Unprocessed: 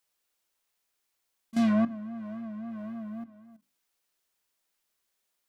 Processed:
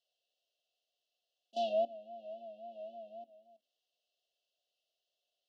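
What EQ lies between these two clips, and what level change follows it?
high-pass 570 Hz 24 dB/octave; brick-wall FIR band-stop 760–2600 Hz; distance through air 240 m; +5.5 dB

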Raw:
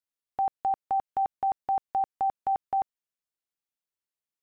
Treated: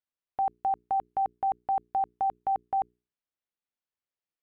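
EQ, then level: distance through air 180 m; hum notches 60/120/180/240/300/360/420 Hz; 0.0 dB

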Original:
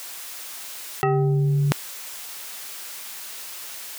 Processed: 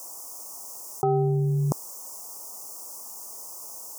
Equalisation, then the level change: inverse Chebyshev band-stop 1.6–3.9 kHz, stop band 40 dB; bass shelf 110 Hz -9.5 dB; treble shelf 8.7 kHz -4 dB; 0.0 dB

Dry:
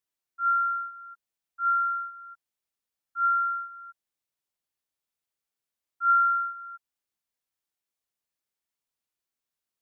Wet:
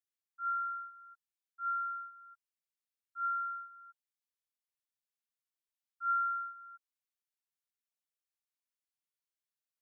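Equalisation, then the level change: high-pass 1.2 kHz; -8.5 dB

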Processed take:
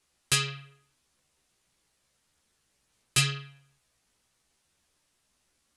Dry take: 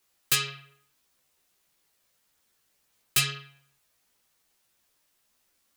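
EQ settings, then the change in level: steep low-pass 11 kHz 36 dB/octave; bass shelf 210 Hz +9 dB; 0.0 dB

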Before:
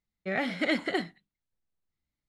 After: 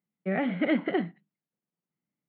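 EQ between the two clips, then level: elliptic band-pass 160–3100 Hz, stop band 40 dB; distance through air 280 m; bass shelf 390 Hz +9 dB; 0.0 dB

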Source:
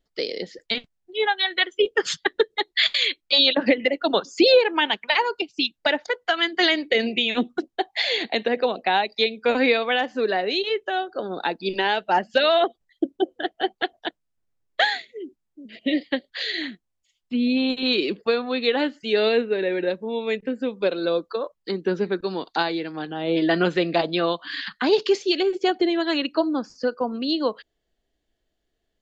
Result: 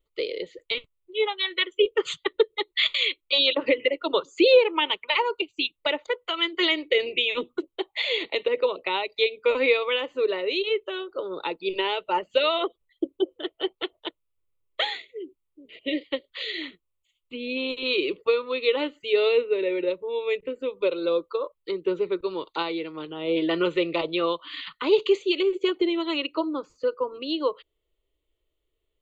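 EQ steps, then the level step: static phaser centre 1.1 kHz, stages 8; 0.0 dB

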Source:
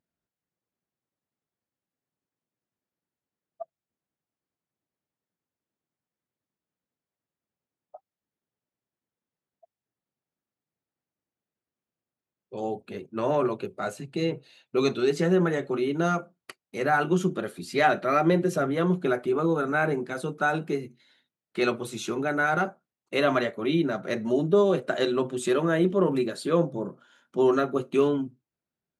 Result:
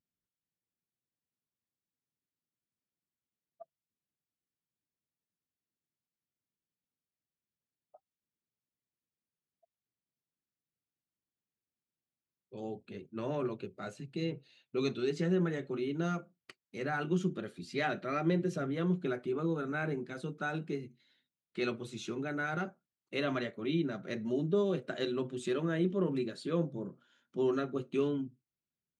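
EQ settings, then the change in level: distance through air 80 m; peaking EQ 840 Hz -9.5 dB 2.1 oct; -4.5 dB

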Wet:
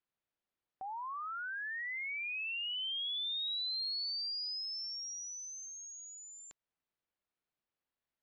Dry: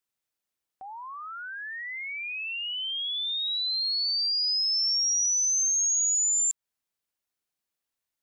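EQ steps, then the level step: low-pass 4.4 kHz 24 dB/octave; treble shelf 2.4 kHz -9 dB; 0.0 dB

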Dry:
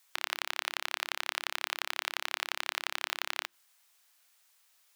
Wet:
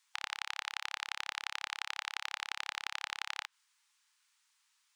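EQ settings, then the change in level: Savitzky-Golay filter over 9 samples; brick-wall FIR high-pass 820 Hz; -4.0 dB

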